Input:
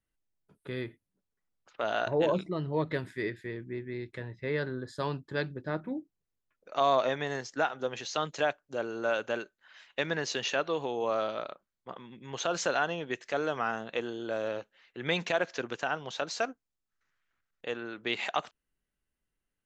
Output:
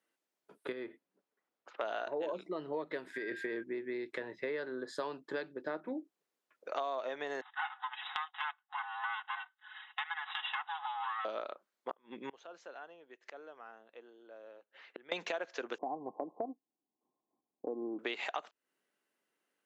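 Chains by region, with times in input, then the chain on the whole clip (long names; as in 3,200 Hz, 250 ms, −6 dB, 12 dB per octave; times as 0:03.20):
0:00.72–0:01.81: high-shelf EQ 3,300 Hz −9.5 dB + downward compressor 1.5 to 1, threshold −54 dBFS
0:03.13–0:03.62: compressor whose output falls as the input rises −39 dBFS + steady tone 1,600 Hz −46 dBFS
0:07.41–0:11.25: lower of the sound and its delayed copy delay 4.7 ms + linear-phase brick-wall band-pass 720–3,900 Hz + notch filter 2,400 Hz, Q 7.2
0:11.91–0:15.12: low-pass filter 3,500 Hz 6 dB per octave + gate with flip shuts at −34 dBFS, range −28 dB
0:15.78–0:17.99: Chebyshev low-pass with heavy ripple 1,100 Hz, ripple 9 dB + spectral tilt −4 dB per octave
whole clip: Bessel high-pass filter 450 Hz, order 4; spectral tilt −2 dB per octave; downward compressor 6 to 1, threshold −45 dBFS; level +9 dB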